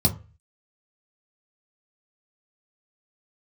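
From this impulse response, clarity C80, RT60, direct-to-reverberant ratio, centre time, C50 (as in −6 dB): 20.0 dB, 0.35 s, 0.0 dB, 11 ms, 14.5 dB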